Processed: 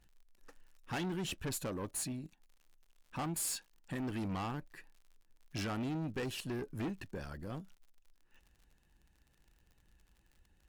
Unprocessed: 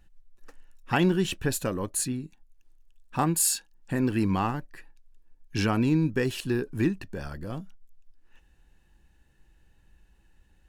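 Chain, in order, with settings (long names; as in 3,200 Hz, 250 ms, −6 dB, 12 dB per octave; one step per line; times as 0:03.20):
harmonic and percussive parts rebalanced percussive +4 dB
tube saturation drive 26 dB, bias 0.3
surface crackle 68 per second −46 dBFS
level −8 dB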